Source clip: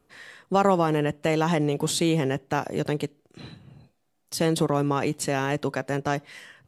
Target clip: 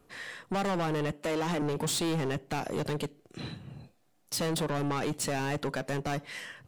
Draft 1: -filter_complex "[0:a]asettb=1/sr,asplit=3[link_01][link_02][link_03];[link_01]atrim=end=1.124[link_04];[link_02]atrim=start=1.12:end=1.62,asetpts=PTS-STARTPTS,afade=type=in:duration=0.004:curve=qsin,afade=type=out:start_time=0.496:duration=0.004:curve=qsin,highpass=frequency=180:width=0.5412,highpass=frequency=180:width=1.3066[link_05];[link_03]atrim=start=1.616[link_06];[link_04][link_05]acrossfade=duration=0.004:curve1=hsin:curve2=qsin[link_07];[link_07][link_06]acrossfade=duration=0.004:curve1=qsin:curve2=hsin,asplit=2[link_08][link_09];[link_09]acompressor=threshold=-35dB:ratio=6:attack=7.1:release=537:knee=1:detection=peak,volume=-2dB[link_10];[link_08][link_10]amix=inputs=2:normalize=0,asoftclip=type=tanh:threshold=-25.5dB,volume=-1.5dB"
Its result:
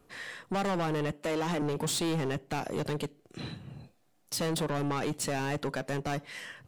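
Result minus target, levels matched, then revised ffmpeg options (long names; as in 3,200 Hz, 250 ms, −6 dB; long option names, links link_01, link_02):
downward compressor: peak gain reduction +6.5 dB
-filter_complex "[0:a]asettb=1/sr,asplit=3[link_01][link_02][link_03];[link_01]atrim=end=1.124[link_04];[link_02]atrim=start=1.12:end=1.62,asetpts=PTS-STARTPTS,afade=type=in:duration=0.004:curve=qsin,afade=type=out:start_time=0.496:duration=0.004:curve=qsin,highpass=frequency=180:width=0.5412,highpass=frequency=180:width=1.3066[link_05];[link_03]atrim=start=1.616[link_06];[link_04][link_05]acrossfade=duration=0.004:curve1=hsin:curve2=qsin[link_07];[link_07][link_06]acrossfade=duration=0.004:curve1=qsin:curve2=hsin,asplit=2[link_08][link_09];[link_09]acompressor=threshold=-27dB:ratio=6:attack=7.1:release=537:knee=1:detection=peak,volume=-2dB[link_10];[link_08][link_10]amix=inputs=2:normalize=0,asoftclip=type=tanh:threshold=-25.5dB,volume=-1.5dB"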